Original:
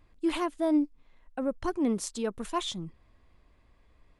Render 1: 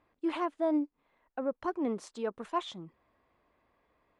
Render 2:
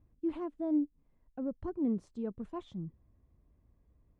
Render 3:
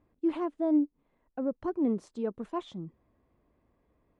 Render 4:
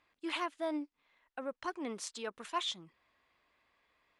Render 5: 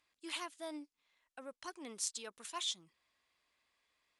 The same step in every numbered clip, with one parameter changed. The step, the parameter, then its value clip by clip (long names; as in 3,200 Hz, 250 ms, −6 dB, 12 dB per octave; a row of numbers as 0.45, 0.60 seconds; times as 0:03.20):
resonant band-pass, frequency: 820, 110, 320, 2,300, 6,300 Hertz